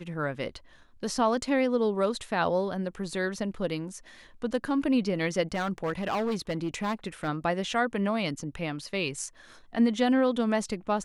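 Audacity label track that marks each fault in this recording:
5.540000	7.290000	clipped -25 dBFS

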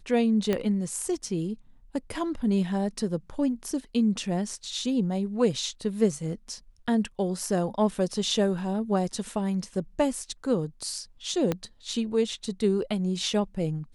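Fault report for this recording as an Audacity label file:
0.530000	0.530000	pop -13 dBFS
11.520000	11.520000	pop -13 dBFS

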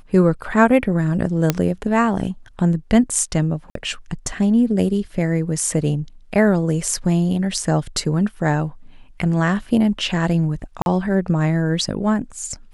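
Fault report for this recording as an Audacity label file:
1.500000	1.500000	pop -2 dBFS
3.700000	3.750000	gap 53 ms
10.820000	10.860000	gap 41 ms

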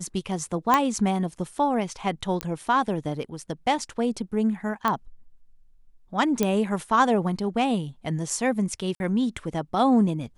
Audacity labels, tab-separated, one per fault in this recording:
0.740000	0.740000	pop -6 dBFS
2.410000	2.410000	pop -12 dBFS
4.880000	4.880000	pop -11 dBFS
6.430000	6.430000	pop -9 dBFS
8.950000	9.000000	gap 51 ms

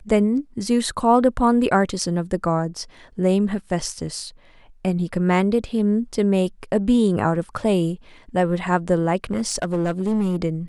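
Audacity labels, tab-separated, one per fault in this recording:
9.240000	10.370000	clipped -17 dBFS

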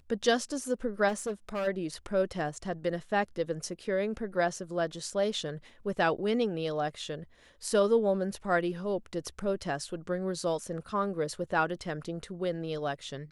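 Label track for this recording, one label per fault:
1.080000	1.680000	clipped -28.5 dBFS

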